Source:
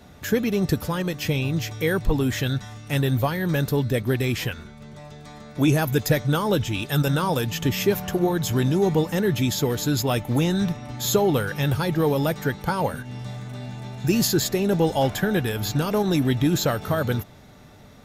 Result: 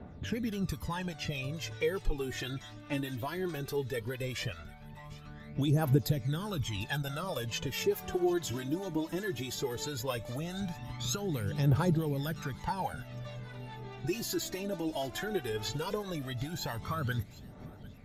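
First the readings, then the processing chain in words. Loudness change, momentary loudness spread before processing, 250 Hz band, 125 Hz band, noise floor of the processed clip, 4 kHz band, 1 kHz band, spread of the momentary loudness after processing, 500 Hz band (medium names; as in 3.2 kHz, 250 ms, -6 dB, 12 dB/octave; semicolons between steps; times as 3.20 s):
-11.5 dB, 10 LU, -12.0 dB, -10.5 dB, -49 dBFS, -9.5 dB, -10.5 dB, 13 LU, -11.5 dB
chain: level-controlled noise filter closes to 2.3 kHz, open at -18.5 dBFS; compression, threshold -24 dBFS, peak gain reduction 10 dB; harmonic tremolo 4.7 Hz, depth 50%, crossover 590 Hz; phaser 0.17 Hz, delay 3.4 ms, feedback 69%; on a send: feedback echo behind a high-pass 749 ms, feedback 34%, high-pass 2.3 kHz, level -18 dB; on the sum: trim -6 dB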